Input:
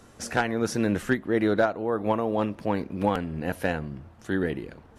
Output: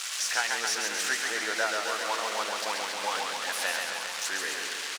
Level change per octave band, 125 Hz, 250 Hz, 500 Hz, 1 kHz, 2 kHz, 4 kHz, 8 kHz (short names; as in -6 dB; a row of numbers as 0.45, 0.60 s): under -30 dB, -21.0 dB, -10.0 dB, -1.0 dB, +4.0 dB, +12.5 dB, n/a